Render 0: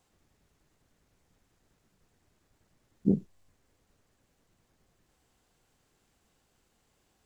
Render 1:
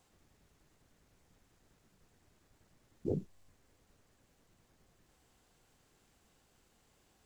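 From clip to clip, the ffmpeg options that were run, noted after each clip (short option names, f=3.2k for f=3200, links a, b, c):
-af "afftfilt=real='re*lt(hypot(re,im),0.316)':imag='im*lt(hypot(re,im),0.316)':win_size=1024:overlap=0.75,volume=1.5dB"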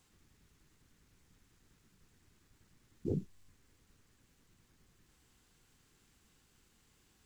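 -af "equalizer=f=640:w=1.4:g=-11,volume=2dB"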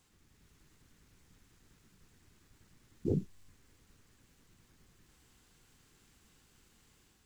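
-af "dynaudnorm=f=150:g=5:m=3.5dB"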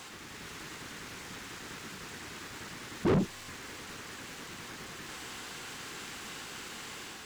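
-filter_complex "[0:a]asplit=2[a][b];[b]highpass=f=720:p=1,volume=35dB,asoftclip=type=tanh:threshold=-19.5dB[c];[a][c]amix=inputs=2:normalize=0,lowpass=f=3k:p=1,volume=-6dB,volume=1dB"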